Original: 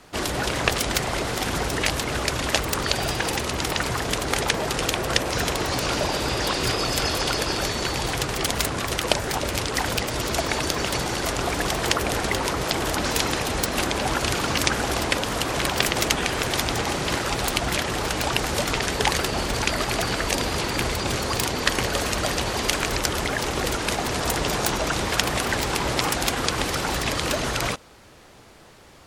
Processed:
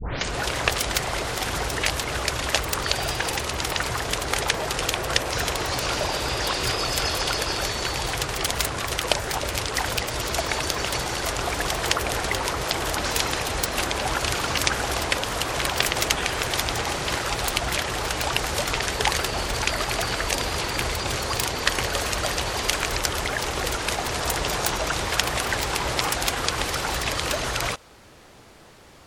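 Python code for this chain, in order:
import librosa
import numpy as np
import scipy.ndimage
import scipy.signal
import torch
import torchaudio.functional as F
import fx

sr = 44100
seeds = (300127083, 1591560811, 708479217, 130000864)

y = fx.tape_start_head(x, sr, length_s=0.4)
y = fx.dynamic_eq(y, sr, hz=230.0, q=0.92, threshold_db=-42.0, ratio=4.0, max_db=-7)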